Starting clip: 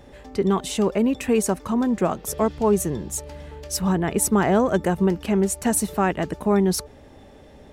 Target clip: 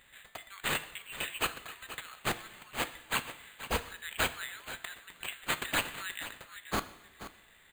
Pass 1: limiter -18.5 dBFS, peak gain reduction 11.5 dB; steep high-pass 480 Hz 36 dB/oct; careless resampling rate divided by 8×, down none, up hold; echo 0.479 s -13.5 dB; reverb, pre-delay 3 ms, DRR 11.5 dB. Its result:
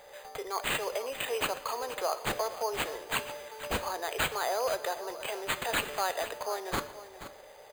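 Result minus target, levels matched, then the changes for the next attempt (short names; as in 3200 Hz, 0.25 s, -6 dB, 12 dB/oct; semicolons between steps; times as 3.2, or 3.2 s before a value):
500 Hz band +7.5 dB
change: steep high-pass 1600 Hz 36 dB/oct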